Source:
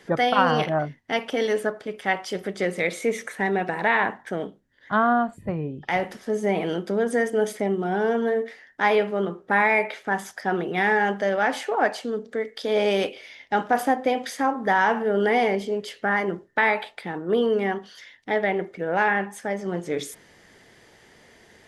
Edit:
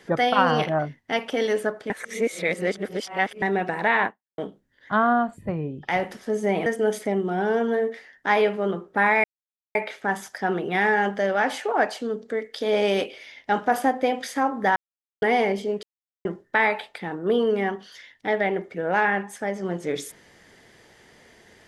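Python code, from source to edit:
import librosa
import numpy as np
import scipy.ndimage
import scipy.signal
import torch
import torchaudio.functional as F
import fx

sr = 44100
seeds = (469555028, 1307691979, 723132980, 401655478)

y = fx.edit(x, sr, fx.reverse_span(start_s=1.9, length_s=1.52),
    fx.fade_out_span(start_s=4.06, length_s=0.32, curve='exp'),
    fx.cut(start_s=6.66, length_s=0.54),
    fx.insert_silence(at_s=9.78, length_s=0.51),
    fx.silence(start_s=14.79, length_s=0.46),
    fx.silence(start_s=15.86, length_s=0.42), tone=tone)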